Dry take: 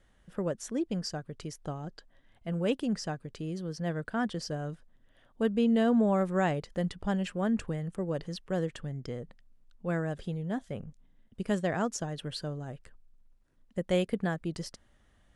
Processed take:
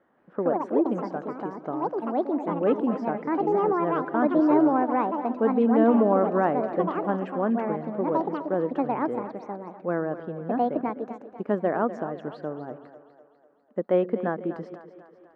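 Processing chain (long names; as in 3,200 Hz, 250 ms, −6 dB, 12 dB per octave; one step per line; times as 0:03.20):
delay with pitch and tempo change per echo 171 ms, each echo +5 semitones, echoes 2
Chebyshev band-pass filter 280–1,200 Hz, order 2
echo with a time of its own for lows and highs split 350 Hz, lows 131 ms, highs 248 ms, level −13 dB
level +7.5 dB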